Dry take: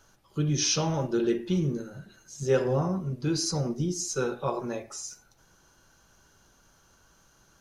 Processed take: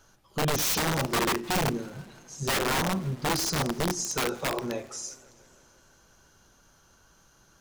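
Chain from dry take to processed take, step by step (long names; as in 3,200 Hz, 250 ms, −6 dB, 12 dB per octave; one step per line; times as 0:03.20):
wrap-around overflow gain 22 dB
feedback echo with a swinging delay time 165 ms, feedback 71%, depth 172 cents, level −23 dB
level +1 dB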